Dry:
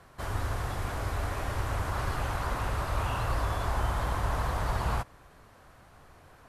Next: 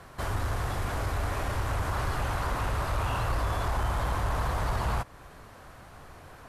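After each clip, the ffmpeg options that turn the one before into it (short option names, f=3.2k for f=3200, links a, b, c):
-filter_complex "[0:a]asplit=2[a][b];[b]acompressor=threshold=-38dB:ratio=6,volume=1dB[c];[a][c]amix=inputs=2:normalize=0,asoftclip=type=tanh:threshold=-20dB"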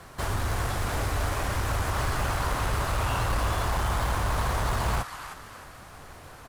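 -filter_complex "[0:a]equalizer=f=8.3k:w=0.54:g=4.5,acrossover=split=700[a][b];[a]acrusher=bits=2:mode=log:mix=0:aa=0.000001[c];[b]asplit=6[d][e][f][g][h][i];[e]adelay=311,afreqshift=73,volume=-7dB[j];[f]adelay=622,afreqshift=146,volume=-14.7dB[k];[g]adelay=933,afreqshift=219,volume=-22.5dB[l];[h]adelay=1244,afreqshift=292,volume=-30.2dB[m];[i]adelay=1555,afreqshift=365,volume=-38dB[n];[d][j][k][l][m][n]amix=inputs=6:normalize=0[o];[c][o]amix=inputs=2:normalize=0,volume=1.5dB"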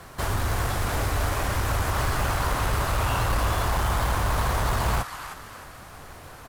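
-af "equalizer=f=15k:t=o:w=0.24:g=10,volume=2.5dB"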